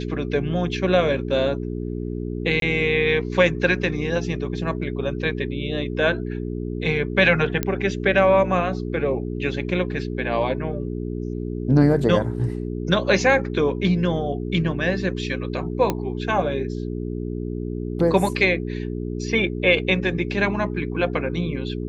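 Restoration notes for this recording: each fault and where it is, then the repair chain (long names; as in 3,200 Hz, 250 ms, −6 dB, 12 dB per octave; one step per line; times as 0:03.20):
mains hum 60 Hz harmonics 7 −28 dBFS
0:02.60–0:02.62: drop-out 22 ms
0:07.63: click −8 dBFS
0:15.90: click −8 dBFS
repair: click removal
hum removal 60 Hz, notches 7
repair the gap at 0:02.60, 22 ms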